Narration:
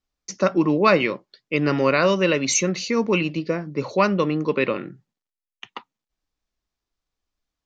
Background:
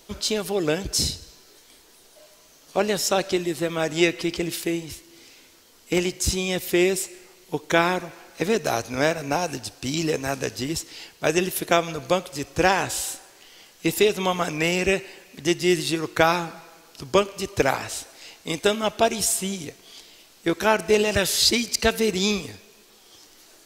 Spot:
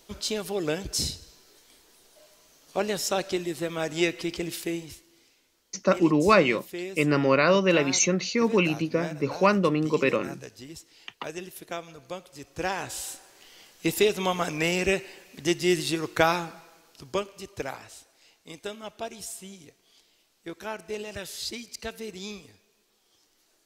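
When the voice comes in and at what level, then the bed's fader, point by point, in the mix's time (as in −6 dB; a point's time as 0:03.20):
5.45 s, −2.0 dB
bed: 0:04.81 −5 dB
0:05.40 −15.5 dB
0:12.13 −15.5 dB
0:13.44 −3 dB
0:16.24 −3 dB
0:17.98 −15.5 dB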